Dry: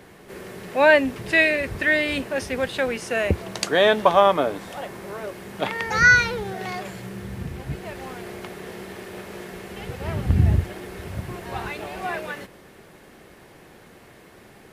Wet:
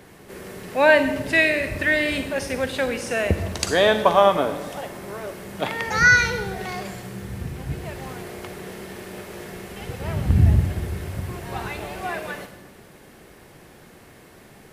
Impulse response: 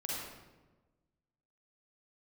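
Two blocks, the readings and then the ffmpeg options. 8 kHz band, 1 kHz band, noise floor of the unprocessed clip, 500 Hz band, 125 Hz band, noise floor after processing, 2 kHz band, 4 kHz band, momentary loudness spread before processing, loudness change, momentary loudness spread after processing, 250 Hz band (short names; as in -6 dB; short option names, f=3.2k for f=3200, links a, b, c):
+3.0 dB, 0.0 dB, -49 dBFS, 0.0 dB, +2.5 dB, -48 dBFS, 0.0 dB, +0.5 dB, 20 LU, 0.0 dB, 20 LU, +1.0 dB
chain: -filter_complex "[0:a]asplit=2[a][b];[b]bass=f=250:g=7,treble=f=4k:g=11[c];[1:a]atrim=start_sample=2205[d];[c][d]afir=irnorm=-1:irlink=0,volume=-10.5dB[e];[a][e]amix=inputs=2:normalize=0,volume=-2dB"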